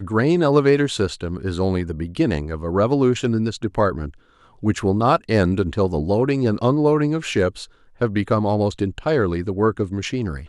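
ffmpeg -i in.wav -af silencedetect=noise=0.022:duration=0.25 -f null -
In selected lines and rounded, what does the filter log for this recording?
silence_start: 4.10
silence_end: 4.63 | silence_duration: 0.53
silence_start: 7.65
silence_end: 8.01 | silence_duration: 0.36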